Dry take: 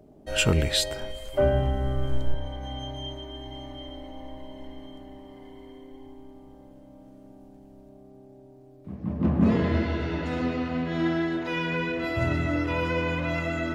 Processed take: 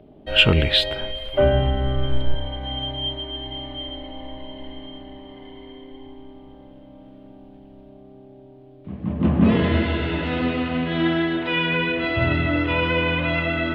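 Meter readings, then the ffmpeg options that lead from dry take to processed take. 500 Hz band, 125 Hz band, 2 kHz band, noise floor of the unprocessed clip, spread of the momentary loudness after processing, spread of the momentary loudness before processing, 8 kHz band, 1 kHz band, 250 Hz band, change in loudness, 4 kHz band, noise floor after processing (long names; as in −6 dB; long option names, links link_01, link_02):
+4.5 dB, +4.5 dB, +8.0 dB, −51 dBFS, 21 LU, 22 LU, can't be measured, +5.0 dB, +4.5 dB, +5.5 dB, +10.0 dB, −46 dBFS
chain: -af "highshelf=frequency=4700:width_type=q:width=3:gain=-13.5,volume=4.5dB"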